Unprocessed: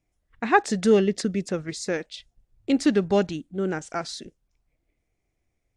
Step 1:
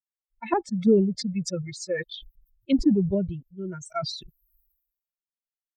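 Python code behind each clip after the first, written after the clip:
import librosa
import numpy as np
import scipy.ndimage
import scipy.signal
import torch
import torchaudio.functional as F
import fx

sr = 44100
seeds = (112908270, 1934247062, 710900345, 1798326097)

y = fx.bin_expand(x, sr, power=3.0)
y = fx.env_lowpass_down(y, sr, base_hz=400.0, full_db=-23.5)
y = fx.sustainer(y, sr, db_per_s=63.0)
y = F.gain(torch.from_numpy(y), 4.5).numpy()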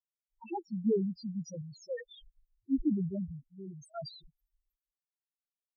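y = fx.spec_topn(x, sr, count=2)
y = F.gain(torch.from_numpy(y), -7.5).numpy()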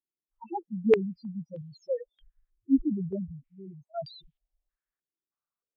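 y = fx.filter_held_lowpass(x, sr, hz=3.2, low_hz=340.0, high_hz=3200.0)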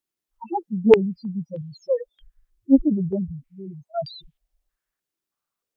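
y = fx.doppler_dist(x, sr, depth_ms=0.23)
y = F.gain(torch.from_numpy(y), 8.0).numpy()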